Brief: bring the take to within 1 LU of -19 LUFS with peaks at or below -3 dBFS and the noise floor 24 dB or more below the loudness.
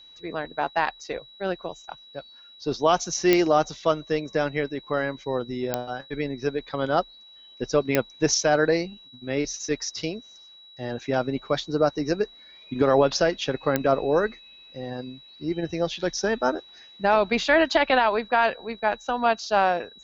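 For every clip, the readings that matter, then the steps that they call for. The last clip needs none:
clicks 4; steady tone 3900 Hz; tone level -47 dBFS; loudness -25.0 LUFS; peak -4.5 dBFS; loudness target -19.0 LUFS
-> de-click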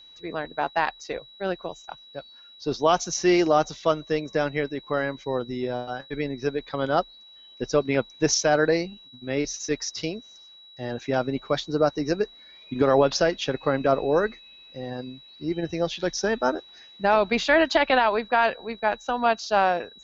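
clicks 0; steady tone 3900 Hz; tone level -47 dBFS
-> notch 3900 Hz, Q 30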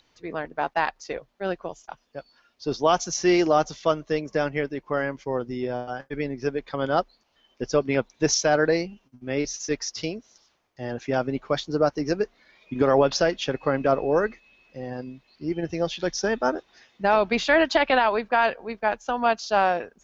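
steady tone none; loudness -25.0 LUFS; peak -8.0 dBFS; loudness target -19.0 LUFS
-> gain +6 dB; limiter -3 dBFS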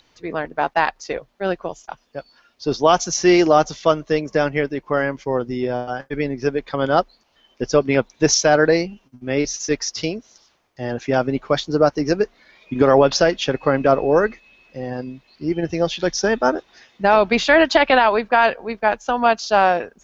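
loudness -19.0 LUFS; peak -3.0 dBFS; noise floor -60 dBFS

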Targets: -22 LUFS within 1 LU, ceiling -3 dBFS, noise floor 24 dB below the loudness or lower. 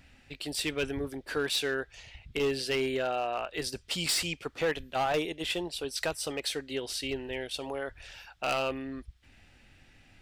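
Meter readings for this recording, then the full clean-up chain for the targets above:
clipped 0.8%; flat tops at -23.0 dBFS; loudness -32.0 LUFS; peak -23.0 dBFS; loudness target -22.0 LUFS
-> clip repair -23 dBFS; gain +10 dB

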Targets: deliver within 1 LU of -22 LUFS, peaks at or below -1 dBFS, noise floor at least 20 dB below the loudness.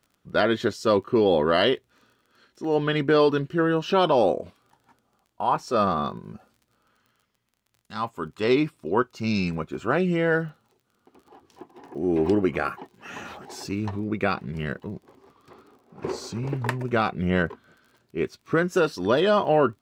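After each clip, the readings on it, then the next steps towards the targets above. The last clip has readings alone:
ticks 29/s; loudness -24.5 LUFS; peak -8.0 dBFS; loudness target -22.0 LUFS
-> de-click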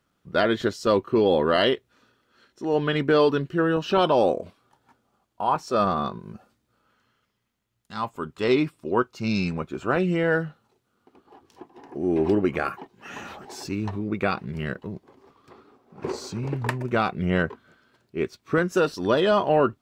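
ticks 0/s; loudness -24.5 LUFS; peak -8.0 dBFS; loudness target -22.0 LUFS
-> gain +2.5 dB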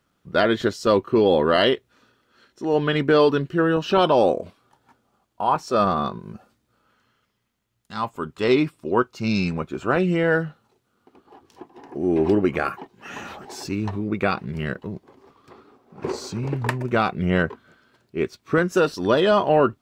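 loudness -22.0 LUFS; peak -5.5 dBFS; noise floor -71 dBFS

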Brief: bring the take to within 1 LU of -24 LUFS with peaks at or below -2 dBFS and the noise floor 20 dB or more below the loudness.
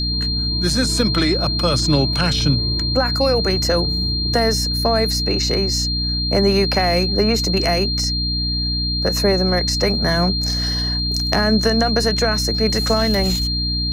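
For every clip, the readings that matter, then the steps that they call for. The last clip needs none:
hum 60 Hz; harmonics up to 300 Hz; hum level -21 dBFS; steady tone 4200 Hz; tone level -21 dBFS; loudness -17.5 LUFS; peak -3.0 dBFS; loudness target -24.0 LUFS
-> notches 60/120/180/240/300 Hz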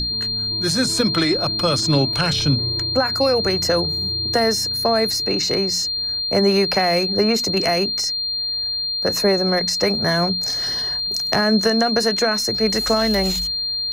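hum none; steady tone 4200 Hz; tone level -21 dBFS
-> notch 4200 Hz, Q 30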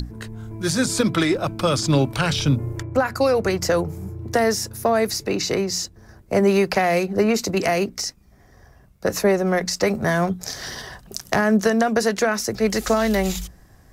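steady tone none; loudness -21.5 LUFS; peak -3.5 dBFS; loudness target -24.0 LUFS
-> gain -2.5 dB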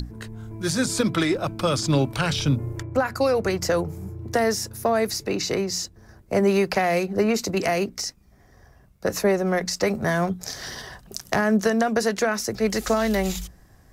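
loudness -24.0 LUFS; peak -6.0 dBFS; noise floor -54 dBFS

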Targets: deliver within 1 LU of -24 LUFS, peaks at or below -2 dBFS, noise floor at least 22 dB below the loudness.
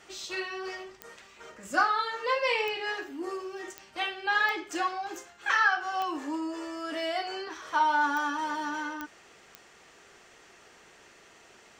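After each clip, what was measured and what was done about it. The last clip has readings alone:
clicks 8; loudness -30.0 LUFS; peak -11.0 dBFS; loudness target -24.0 LUFS
-> de-click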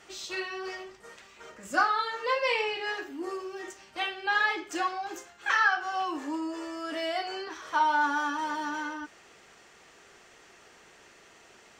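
clicks 0; loudness -30.0 LUFS; peak -11.0 dBFS; loudness target -24.0 LUFS
-> gain +6 dB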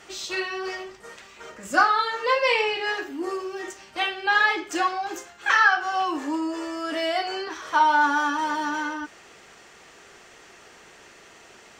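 loudness -24.0 LUFS; peak -5.0 dBFS; noise floor -50 dBFS

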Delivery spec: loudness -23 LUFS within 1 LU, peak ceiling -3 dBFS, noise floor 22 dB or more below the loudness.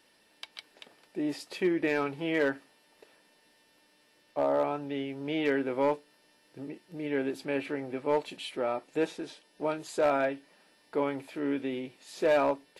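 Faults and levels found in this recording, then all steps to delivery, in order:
clipped 0.3%; flat tops at -19.0 dBFS; loudness -31.0 LUFS; peak -19.0 dBFS; loudness target -23.0 LUFS
-> clip repair -19 dBFS; gain +8 dB

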